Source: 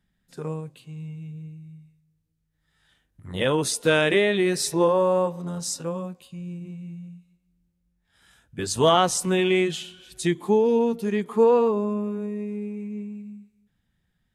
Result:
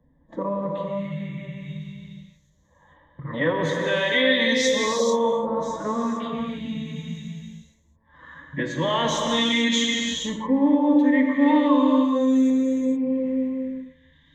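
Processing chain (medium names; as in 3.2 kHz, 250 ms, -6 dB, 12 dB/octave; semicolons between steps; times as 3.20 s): gate -55 dBFS, range -7 dB; LFO low-pass saw up 0.4 Hz 590–7300 Hz; reverse; compression 4:1, threshold -31 dBFS, peak gain reduction 15.5 dB; reverse; formant-preserving pitch shift +4 st; rippled EQ curve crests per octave 1.1, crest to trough 15 dB; gated-style reverb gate 480 ms flat, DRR 0 dB; three bands compressed up and down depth 40%; trim +6 dB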